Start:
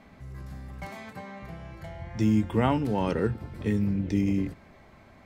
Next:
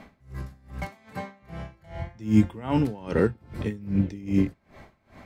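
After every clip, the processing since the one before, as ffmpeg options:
ffmpeg -i in.wav -af "aeval=exprs='val(0)*pow(10,-24*(0.5-0.5*cos(2*PI*2.5*n/s))/20)':channel_layout=same,volume=7.5dB" out.wav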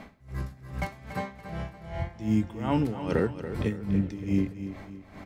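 ffmpeg -i in.wav -af "acompressor=threshold=-23dB:ratio=6,aecho=1:1:284|568|852|1136:0.282|0.118|0.0497|0.0209,volume=2dB" out.wav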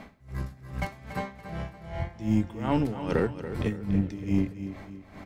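ffmpeg -i in.wav -af "aeval=exprs='0.282*(cos(1*acos(clip(val(0)/0.282,-1,1)))-cos(1*PI/2))+0.0141*(cos(6*acos(clip(val(0)/0.282,-1,1)))-cos(6*PI/2))':channel_layout=same" out.wav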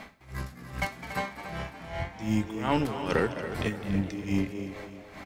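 ffmpeg -i in.wav -filter_complex "[0:a]tiltshelf=frequency=740:gain=-5,asplit=6[link_01][link_02][link_03][link_04][link_05][link_06];[link_02]adelay=208,afreqshift=110,volume=-13dB[link_07];[link_03]adelay=416,afreqshift=220,volume=-19.6dB[link_08];[link_04]adelay=624,afreqshift=330,volume=-26.1dB[link_09];[link_05]adelay=832,afreqshift=440,volume=-32.7dB[link_10];[link_06]adelay=1040,afreqshift=550,volume=-39.2dB[link_11];[link_01][link_07][link_08][link_09][link_10][link_11]amix=inputs=6:normalize=0,volume=1.5dB" out.wav

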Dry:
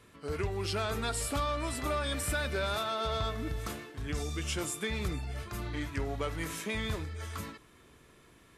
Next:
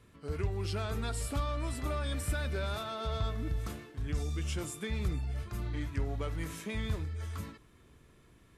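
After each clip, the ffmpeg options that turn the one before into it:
ffmpeg -i in.wav -af "lowshelf=frequency=220:gain=10,volume=-6dB" out.wav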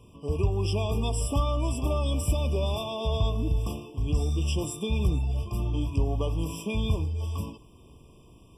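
ffmpeg -i in.wav -af "afftfilt=real='re*eq(mod(floor(b*sr/1024/1200),2),0)':imag='im*eq(mod(floor(b*sr/1024/1200),2),0)':win_size=1024:overlap=0.75,volume=8dB" out.wav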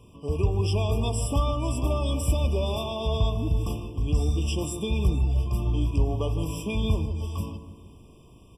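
ffmpeg -i in.wav -filter_complex "[0:a]asplit=2[link_01][link_02];[link_02]adelay=154,lowpass=frequency=1100:poles=1,volume=-9dB,asplit=2[link_03][link_04];[link_04]adelay=154,lowpass=frequency=1100:poles=1,volume=0.5,asplit=2[link_05][link_06];[link_06]adelay=154,lowpass=frequency=1100:poles=1,volume=0.5,asplit=2[link_07][link_08];[link_08]adelay=154,lowpass=frequency=1100:poles=1,volume=0.5,asplit=2[link_09][link_10];[link_10]adelay=154,lowpass=frequency=1100:poles=1,volume=0.5,asplit=2[link_11][link_12];[link_12]adelay=154,lowpass=frequency=1100:poles=1,volume=0.5[link_13];[link_01][link_03][link_05][link_07][link_09][link_11][link_13]amix=inputs=7:normalize=0,volume=1dB" out.wav

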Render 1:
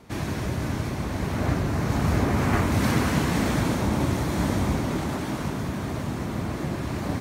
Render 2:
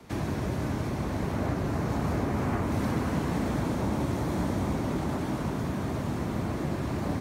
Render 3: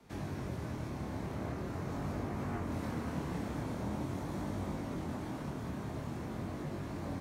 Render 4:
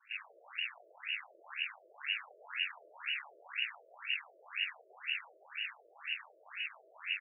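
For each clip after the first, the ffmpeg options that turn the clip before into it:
ffmpeg -i in.wav -filter_complex "[0:a]acrossover=split=100|230|1200[link_01][link_02][link_03][link_04];[link_01]acompressor=threshold=-36dB:ratio=4[link_05];[link_02]acompressor=threshold=-33dB:ratio=4[link_06];[link_03]acompressor=threshold=-30dB:ratio=4[link_07];[link_04]acompressor=threshold=-45dB:ratio=4[link_08];[link_05][link_06][link_07][link_08]amix=inputs=4:normalize=0" out.wav
ffmpeg -i in.wav -af "flanger=delay=20:depth=7.8:speed=0.44,volume=-6.5dB" out.wav
ffmpeg -i in.wav -af "aresample=16000,aeval=exprs='max(val(0),0)':channel_layout=same,aresample=44100,lowpass=frequency=2500:width_type=q:width=0.5098,lowpass=frequency=2500:width_type=q:width=0.6013,lowpass=frequency=2500:width_type=q:width=0.9,lowpass=frequency=2500:width_type=q:width=2.563,afreqshift=-2900,afftfilt=real='re*between(b*sr/1024,460*pow(2100/460,0.5+0.5*sin(2*PI*2*pts/sr))/1.41,460*pow(2100/460,0.5+0.5*sin(2*PI*2*pts/sr))*1.41)':imag='im*between(b*sr/1024,460*pow(2100/460,0.5+0.5*sin(2*PI*2*pts/sr))/1.41,460*pow(2100/460,0.5+0.5*sin(2*PI*2*pts/sr))*1.41)':win_size=1024:overlap=0.75,volume=7.5dB" out.wav

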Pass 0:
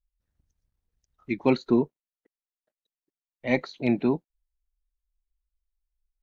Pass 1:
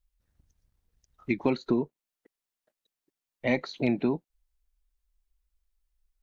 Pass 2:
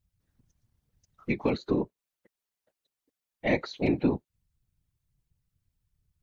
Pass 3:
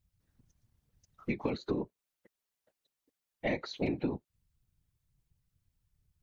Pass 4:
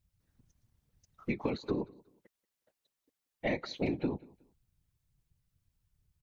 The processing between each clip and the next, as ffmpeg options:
ffmpeg -i in.wav -af "acompressor=threshold=-29dB:ratio=4,volume=5.5dB" out.wav
ffmpeg -i in.wav -af "afftfilt=real='hypot(re,im)*cos(2*PI*random(0))':imag='hypot(re,im)*sin(2*PI*random(1))':win_size=512:overlap=0.75,volume=6dB" out.wav
ffmpeg -i in.wav -af "acompressor=threshold=-29dB:ratio=6" out.wav
ffmpeg -i in.wav -af "aecho=1:1:183|366:0.0668|0.0187" out.wav

